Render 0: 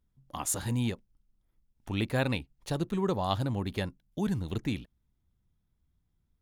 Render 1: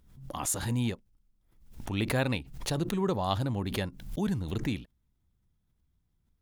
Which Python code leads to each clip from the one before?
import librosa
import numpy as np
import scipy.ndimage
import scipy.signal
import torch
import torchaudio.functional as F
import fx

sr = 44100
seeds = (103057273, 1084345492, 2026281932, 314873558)

y = fx.pre_swell(x, sr, db_per_s=79.0)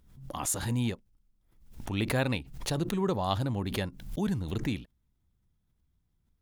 y = x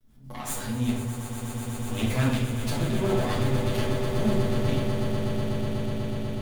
y = fx.lower_of_two(x, sr, delay_ms=8.2)
y = fx.echo_swell(y, sr, ms=123, loudest=8, wet_db=-11.5)
y = fx.room_shoebox(y, sr, seeds[0], volume_m3=270.0, walls='mixed', distance_m=1.5)
y = F.gain(torch.from_numpy(y), -3.5).numpy()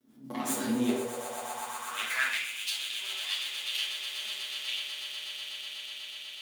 y = fx.filter_sweep_highpass(x, sr, from_hz=270.0, to_hz=3000.0, start_s=0.66, end_s=2.7, q=3.1)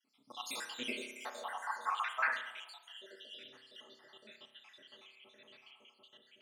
y = fx.spec_dropout(x, sr, seeds[1], share_pct=69)
y = fx.rev_spring(y, sr, rt60_s=1.0, pass_ms=(31,), chirp_ms=65, drr_db=6.5)
y = fx.filter_sweep_bandpass(y, sr, from_hz=3100.0, to_hz=270.0, start_s=0.79, end_s=3.51, q=1.3)
y = F.gain(torch.from_numpy(y), 6.5).numpy()